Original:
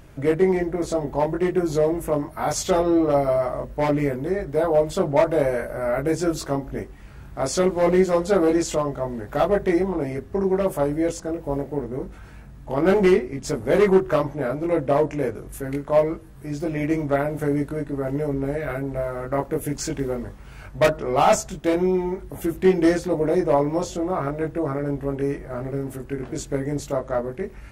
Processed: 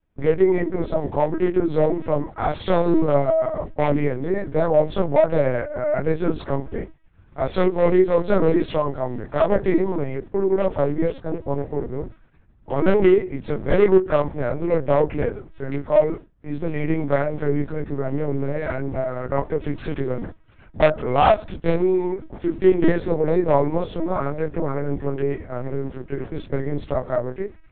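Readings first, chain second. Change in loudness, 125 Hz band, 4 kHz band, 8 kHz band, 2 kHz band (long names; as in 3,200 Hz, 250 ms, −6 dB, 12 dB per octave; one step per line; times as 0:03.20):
+1.0 dB, +2.0 dB, can't be measured, below −40 dB, −0.5 dB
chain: downward expander −30 dBFS
low-shelf EQ 68 Hz +5 dB
linear-prediction vocoder at 8 kHz pitch kept
level +1.5 dB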